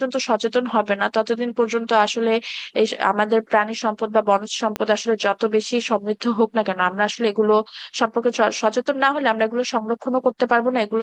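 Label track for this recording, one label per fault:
4.760000	4.760000	click −9 dBFS

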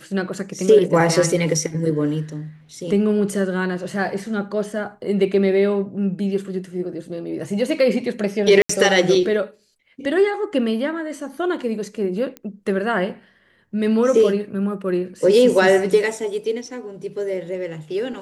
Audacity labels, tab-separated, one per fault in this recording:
8.620000	8.690000	drop-out 74 ms
12.370000	12.370000	click −19 dBFS

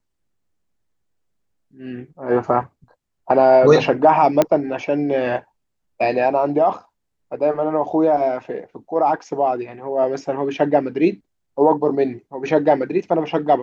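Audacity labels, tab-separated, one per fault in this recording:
4.420000	4.420000	click −3 dBFS

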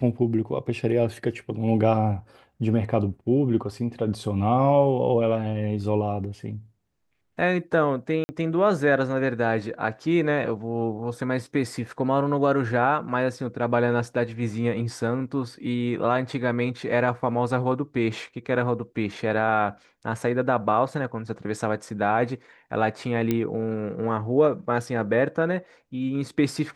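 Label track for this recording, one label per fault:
8.240000	8.290000	drop-out 50 ms
23.310000	23.310000	click −11 dBFS

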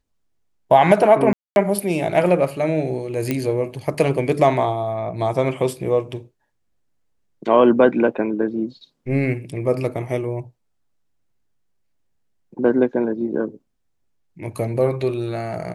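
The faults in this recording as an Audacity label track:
1.330000	1.560000	drop-out 231 ms
3.310000	3.310000	click −8 dBFS

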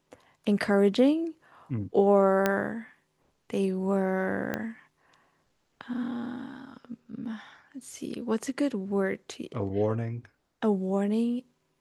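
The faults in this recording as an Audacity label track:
2.460000	2.460000	click −10 dBFS
4.540000	4.540000	click −16 dBFS

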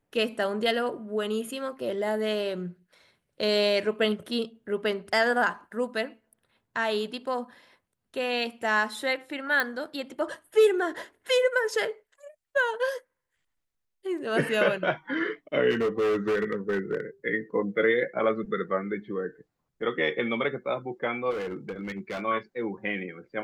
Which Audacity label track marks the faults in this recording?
9.600000	9.600000	click −12 dBFS
15.700000	17.000000	clipping −22 dBFS
21.300000	22.210000	clipping −29.5 dBFS

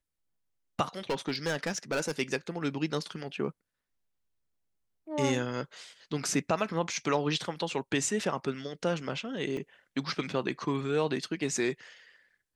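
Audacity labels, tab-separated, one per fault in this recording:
1.100000	2.120000	clipping −25.5 dBFS
9.570000	9.570000	drop-out 2.3 ms

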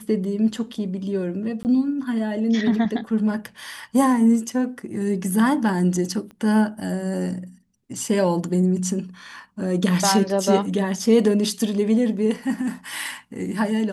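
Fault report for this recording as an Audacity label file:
1.630000	1.650000	drop-out 19 ms
6.310000	6.310000	click −29 dBFS

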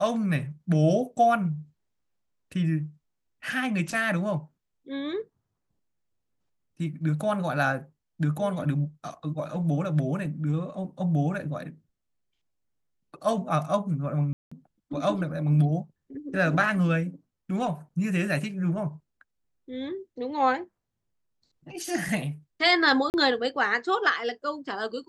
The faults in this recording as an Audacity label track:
14.330000	14.520000	drop-out 185 ms
23.100000	23.140000	drop-out 39 ms

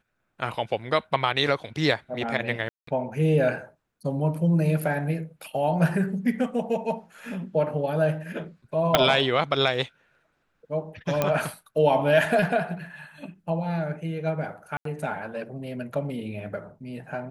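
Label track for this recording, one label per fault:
2.690000	2.870000	drop-out 184 ms
8.950000	8.950000	click −2 dBFS
11.220000	11.220000	click −9 dBFS
14.770000	14.850000	drop-out 83 ms

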